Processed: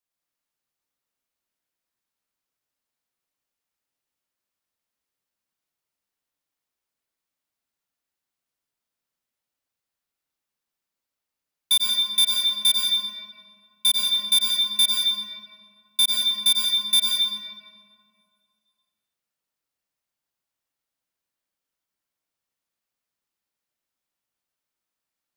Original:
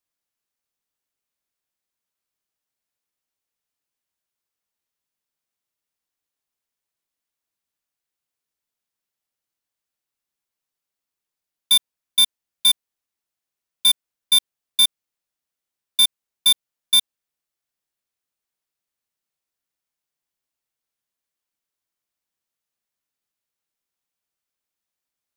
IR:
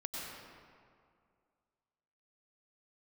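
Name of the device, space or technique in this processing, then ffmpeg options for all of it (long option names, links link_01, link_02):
stairwell: -filter_complex "[0:a]asplit=3[link_01][link_02][link_03];[link_01]afade=type=out:start_time=11.72:duration=0.02[link_04];[link_02]highpass=200,afade=type=in:start_time=11.72:duration=0.02,afade=type=out:start_time=12.66:duration=0.02[link_05];[link_03]afade=type=in:start_time=12.66:duration=0.02[link_06];[link_04][link_05][link_06]amix=inputs=3:normalize=0[link_07];[1:a]atrim=start_sample=2205[link_08];[link_07][link_08]afir=irnorm=-1:irlink=0"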